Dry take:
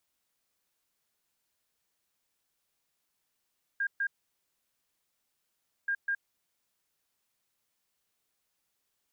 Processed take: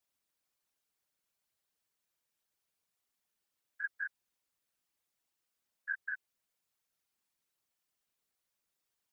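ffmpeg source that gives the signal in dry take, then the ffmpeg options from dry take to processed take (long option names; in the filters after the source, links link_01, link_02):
-f lavfi -i "aevalsrc='0.0447*sin(2*PI*1610*t)*clip(min(mod(mod(t,2.08),0.2),0.07-mod(mod(t,2.08),0.2))/0.005,0,1)*lt(mod(t,2.08),0.4)':duration=4.16:sample_rate=44100"
-af "afftfilt=real='hypot(re,im)*cos(2*PI*random(0))':imag='hypot(re,im)*sin(2*PI*random(1))':win_size=512:overlap=0.75"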